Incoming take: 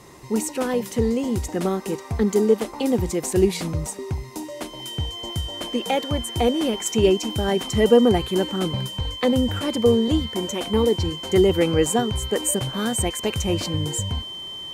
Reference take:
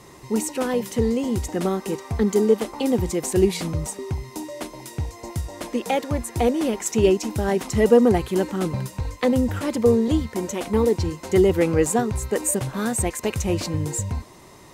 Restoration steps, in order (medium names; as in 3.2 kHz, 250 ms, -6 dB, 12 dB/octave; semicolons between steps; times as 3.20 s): band-stop 3.1 kHz, Q 30